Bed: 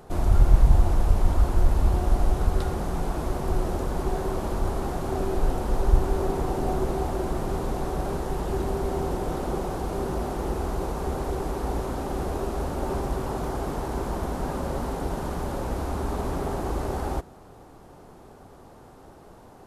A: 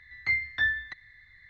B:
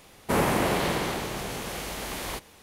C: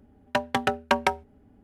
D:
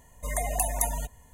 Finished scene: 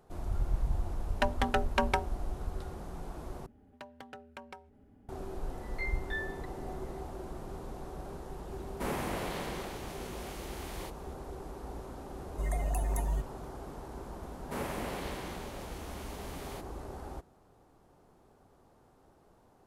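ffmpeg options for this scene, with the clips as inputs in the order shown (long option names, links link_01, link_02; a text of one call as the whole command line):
ffmpeg -i bed.wav -i cue0.wav -i cue1.wav -i cue2.wav -i cue3.wav -filter_complex "[3:a]asplit=2[link_01][link_02];[2:a]asplit=2[link_03][link_04];[0:a]volume=-14.5dB[link_05];[link_01]alimiter=limit=-12.5dB:level=0:latency=1:release=61[link_06];[link_02]acompressor=threshold=-33dB:ratio=16:attack=0.25:release=137:knee=1:detection=rms[link_07];[4:a]bass=frequency=250:gain=10,treble=frequency=4000:gain=-8[link_08];[link_05]asplit=2[link_09][link_10];[link_09]atrim=end=3.464[link_11];[link_07]atrim=end=1.63,asetpts=PTS-STARTPTS,volume=-3.5dB[link_12];[link_10]atrim=start=5.086[link_13];[link_06]atrim=end=1.63,asetpts=PTS-STARTPTS,volume=-2dB,afade=type=in:duration=0.004:curve=hsin,afade=type=out:start_time=1.626:duration=0.004:curve=hsin,adelay=870[link_14];[1:a]atrim=end=1.49,asetpts=PTS-STARTPTS,volume=-12.5dB,afade=type=in:duration=0.004:curve=hsin,afade=type=out:start_time=1.486:duration=0.004:curve=hsin,adelay=5520[link_15];[link_03]atrim=end=2.62,asetpts=PTS-STARTPTS,volume=-12dB,afade=type=in:duration=0.004:curve=hsin,afade=type=out:start_time=2.616:duration=0.004:curve=hsin,adelay=8510[link_16];[link_08]atrim=end=1.33,asetpts=PTS-STARTPTS,volume=-9dB,afade=type=in:duration=0.004:curve=hsin,afade=type=out:start_time=1.326:duration=0.004:curve=hsin,adelay=12150[link_17];[link_04]atrim=end=2.62,asetpts=PTS-STARTPTS,volume=-14dB,afade=type=in:duration=0.004:curve=hsin,afade=type=out:start_time=2.616:duration=0.004:curve=hsin,adelay=14220[link_18];[link_11][link_12]acrossfade=duration=0.004:curve1=hsin:curve2=hsin[link_19];[link_19][link_13]acrossfade=duration=0.004:curve1=hsin:curve2=hsin[link_20];[link_20][link_14][link_15][link_16][link_17][link_18]amix=inputs=6:normalize=0" out.wav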